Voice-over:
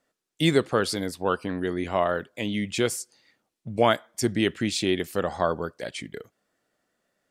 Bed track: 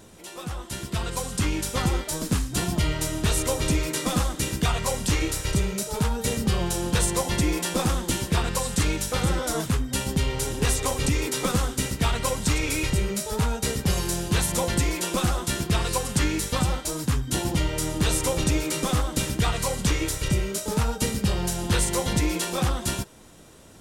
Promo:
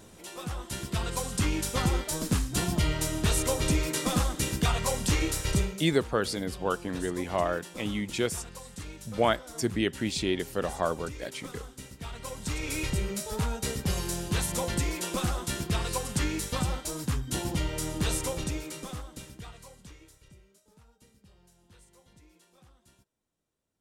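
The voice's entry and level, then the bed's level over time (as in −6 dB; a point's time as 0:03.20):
5.40 s, −4.0 dB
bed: 0:05.61 −2.5 dB
0:05.92 −18 dB
0:11.97 −18 dB
0:12.79 −5.5 dB
0:18.14 −5.5 dB
0:20.62 −35 dB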